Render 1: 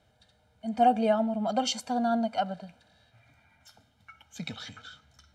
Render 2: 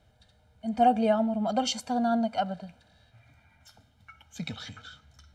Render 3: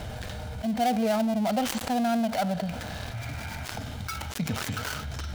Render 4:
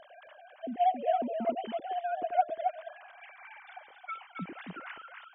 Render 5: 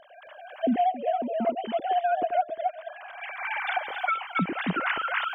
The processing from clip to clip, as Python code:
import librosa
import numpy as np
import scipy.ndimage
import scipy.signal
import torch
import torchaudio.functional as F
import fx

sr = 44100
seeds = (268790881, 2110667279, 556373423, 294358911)

y1 = fx.low_shelf(x, sr, hz=95.0, db=10.5)
y2 = fx.dead_time(y1, sr, dead_ms=0.17)
y2 = fx.env_flatten(y2, sr, amount_pct=70)
y2 = y2 * librosa.db_to_amplitude(-5.0)
y3 = fx.sine_speech(y2, sr)
y3 = y3 + 10.0 ** (-5.0 / 20.0) * np.pad(y3, (int(271 * sr / 1000.0), 0))[:len(y3)]
y3 = y3 * librosa.db_to_amplitude(-6.5)
y4 = fx.recorder_agc(y3, sr, target_db=-17.5, rise_db_per_s=21.0, max_gain_db=30)